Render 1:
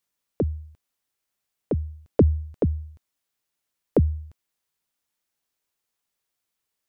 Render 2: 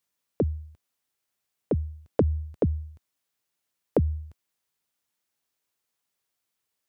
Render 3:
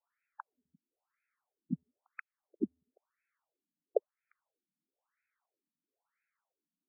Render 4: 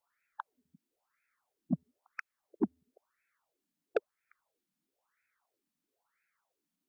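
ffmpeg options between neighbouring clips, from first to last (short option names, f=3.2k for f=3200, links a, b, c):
-af "acompressor=threshold=-18dB:ratio=6,highpass=55"
-af "acompressor=threshold=-36dB:ratio=2.5,afftfilt=real='re*between(b*sr/1024,210*pow(1900/210,0.5+0.5*sin(2*PI*1*pts/sr))/1.41,210*pow(1900/210,0.5+0.5*sin(2*PI*1*pts/sr))*1.41)':imag='im*between(b*sr/1024,210*pow(1900/210,0.5+0.5*sin(2*PI*1*pts/sr))/1.41,210*pow(1900/210,0.5+0.5*sin(2*PI*1*pts/sr))*1.41)':win_size=1024:overlap=0.75,volume=6dB"
-af "asoftclip=type=tanh:threshold=-26dB,volume=6dB"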